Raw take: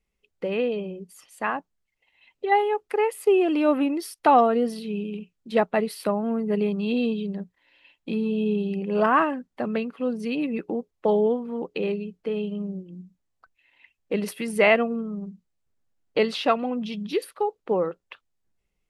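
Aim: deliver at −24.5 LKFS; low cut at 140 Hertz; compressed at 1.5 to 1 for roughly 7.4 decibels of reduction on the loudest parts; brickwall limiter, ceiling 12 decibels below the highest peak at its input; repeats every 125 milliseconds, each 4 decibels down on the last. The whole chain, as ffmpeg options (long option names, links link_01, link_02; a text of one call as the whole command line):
ffmpeg -i in.wav -af "highpass=140,acompressor=threshold=-34dB:ratio=1.5,alimiter=level_in=1dB:limit=-24dB:level=0:latency=1,volume=-1dB,aecho=1:1:125|250|375|500|625|750|875|1000|1125:0.631|0.398|0.25|0.158|0.0994|0.0626|0.0394|0.0249|0.0157,volume=8dB" out.wav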